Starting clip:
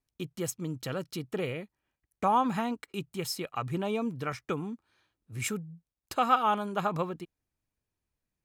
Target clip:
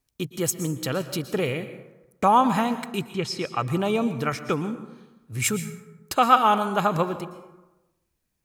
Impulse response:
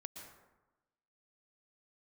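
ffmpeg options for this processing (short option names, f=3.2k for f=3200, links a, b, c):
-filter_complex "[0:a]asettb=1/sr,asplit=3[a][b][c];[a]atrim=end=3.124[d];[b]atrim=start=3.12:end=3.59,asetpts=PTS-STARTPTS,afade=t=in:d=0.004:c=qsin,afade=t=out:st=0.466:d=0.004:c=qsin,lowpass=4.3k[e];[c]atrim=start=3.586[f];[d][e]acrossfade=d=0.004:c1=hsin:c2=qsin[g];[g][f]acrossfade=d=0.004:c1=qsin:c2=hsin,asplit=2[h][i];[1:a]atrim=start_sample=2205,highshelf=f=3.8k:g=10[j];[i][j]afir=irnorm=-1:irlink=0,volume=-1dB[k];[h][k]amix=inputs=2:normalize=0,volume=4dB"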